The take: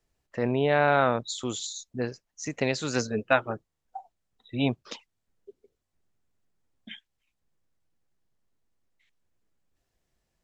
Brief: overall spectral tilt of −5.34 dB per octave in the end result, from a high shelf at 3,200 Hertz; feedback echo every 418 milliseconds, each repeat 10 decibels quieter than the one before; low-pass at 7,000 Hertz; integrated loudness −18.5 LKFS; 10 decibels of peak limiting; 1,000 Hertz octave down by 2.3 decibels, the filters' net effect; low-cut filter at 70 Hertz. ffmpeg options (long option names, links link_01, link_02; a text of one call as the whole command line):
ffmpeg -i in.wav -af "highpass=70,lowpass=7000,equalizer=frequency=1000:width_type=o:gain=-3,highshelf=frequency=3200:gain=-4.5,alimiter=limit=-17dB:level=0:latency=1,aecho=1:1:418|836|1254|1672:0.316|0.101|0.0324|0.0104,volume=14dB" out.wav